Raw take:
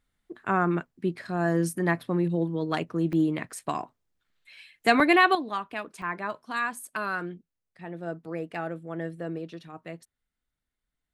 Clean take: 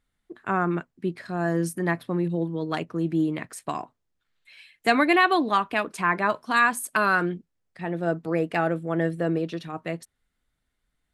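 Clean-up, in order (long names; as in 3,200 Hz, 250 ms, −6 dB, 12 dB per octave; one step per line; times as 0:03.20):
repair the gap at 0:00.86/0:01.24/0:03.13/0:03.51/0:03.89/0:04.30/0:05.00/0:06.02, 2.1 ms
level 0 dB, from 0:05.35 +9 dB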